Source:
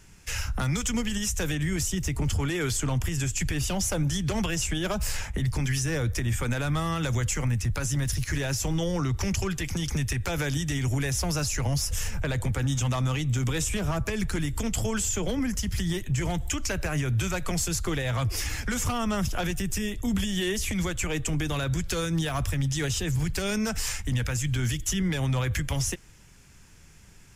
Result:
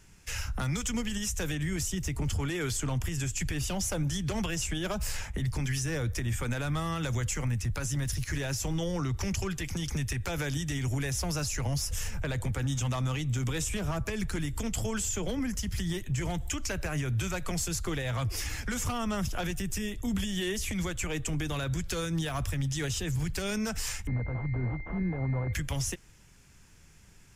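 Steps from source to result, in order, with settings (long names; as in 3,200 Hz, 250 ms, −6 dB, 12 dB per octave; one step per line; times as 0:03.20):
0:24.07–0:25.53: switching amplifier with a slow clock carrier 2,100 Hz
level −4 dB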